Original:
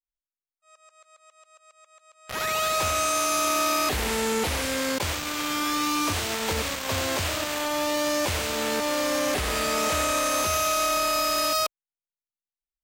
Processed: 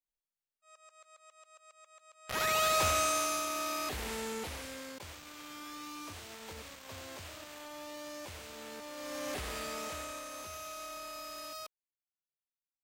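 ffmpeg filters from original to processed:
ffmpeg -i in.wav -af "volume=4dB,afade=type=out:start_time=2.87:duration=0.6:silence=0.375837,afade=type=out:start_time=4.13:duration=0.81:silence=0.421697,afade=type=in:start_time=8.94:duration=0.43:silence=0.421697,afade=type=out:start_time=9.37:duration=0.89:silence=0.398107" out.wav

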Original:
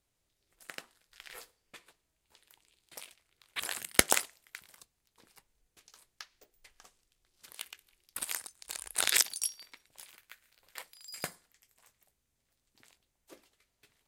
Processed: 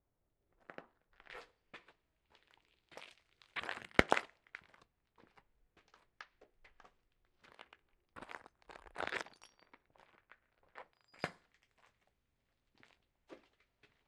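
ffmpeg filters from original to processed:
ffmpeg -i in.wav -af "asetnsamples=nb_out_samples=441:pad=0,asendcmd='1.3 lowpass f 2700;3.07 lowpass f 4600;3.57 lowpass f 2000;7.55 lowpass f 1200;11.19 lowpass f 2900',lowpass=1100" out.wav

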